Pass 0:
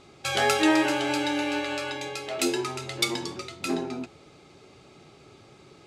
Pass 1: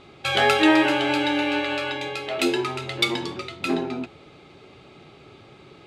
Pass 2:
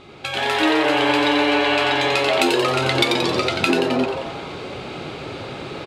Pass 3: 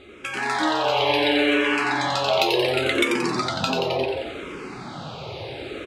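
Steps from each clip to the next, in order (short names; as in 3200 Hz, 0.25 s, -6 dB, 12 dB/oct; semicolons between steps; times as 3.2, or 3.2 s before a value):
resonant high shelf 4500 Hz -7.5 dB, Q 1.5; gain +4 dB
compressor 6:1, threshold -32 dBFS, peak gain reduction 18 dB; frequency-shifting echo 89 ms, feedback 57%, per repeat +140 Hz, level -5 dB; AGC gain up to 11 dB; gain +4 dB
endless phaser -0.7 Hz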